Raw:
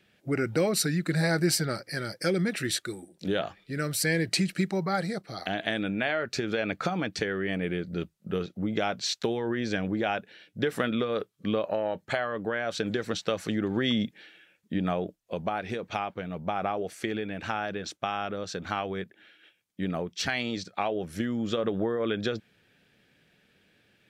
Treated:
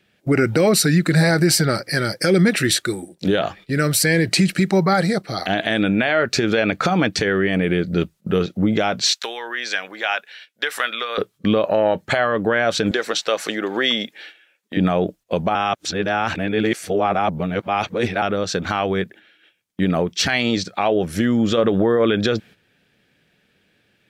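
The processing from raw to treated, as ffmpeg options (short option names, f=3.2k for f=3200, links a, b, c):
-filter_complex "[0:a]asettb=1/sr,asplit=3[a][b][c];[a]atrim=end=9.124[d];[b]atrim=start=9.12:end=11.18,asetpts=PTS-STARTPTS,afade=t=in:d=0.004:c=qsin,afade=t=out:st=2.056:d=0.004:c=qsin,highpass=1.1k[e];[c]atrim=start=11.176[f];[d][e]acrossfade=d=0.004:c1=hsin:c2=qsin[g];[g][f]acrossfade=d=0.004:c1=qsin:c2=hsin,asettb=1/sr,asplit=3[h][i][j];[h]atrim=end=12.914[k];[i]atrim=start=12.91:end=14.77,asetpts=PTS-STARTPTS,afade=t=in:d=0.004:c=qsin,afade=t=out:st=1.856:d=0.004:c=qsin,highpass=490[l];[j]atrim=start=14.766[m];[k][l]acrossfade=d=0.004:c1=hsin:c2=qsin[n];[n][m]acrossfade=d=0.004:c1=qsin:c2=hsin,asplit=3[o][p][q];[o]atrim=end=15.552[r];[p]atrim=start=15.548:end=18.222,asetpts=PTS-STARTPTS,areverse[s];[q]atrim=start=18.218[t];[r][s]acrossfade=d=0.004:c1=hsin:c2=hsin[u];[u][t]acrossfade=d=0.004:c1=hsin:c2=hsin,agate=range=-10dB:threshold=-52dB:ratio=16:detection=peak,alimiter=level_in=18.5dB:limit=-1dB:release=50:level=0:latency=1,volume=-6dB"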